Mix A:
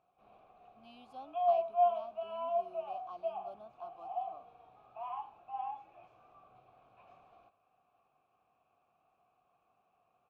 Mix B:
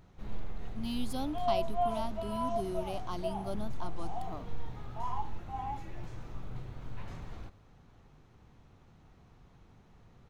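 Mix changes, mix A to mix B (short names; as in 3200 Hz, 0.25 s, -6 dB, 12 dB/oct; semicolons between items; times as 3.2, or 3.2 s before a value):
second sound: add bell 2200 Hz -14.5 dB 2.3 oct; master: remove vowel filter a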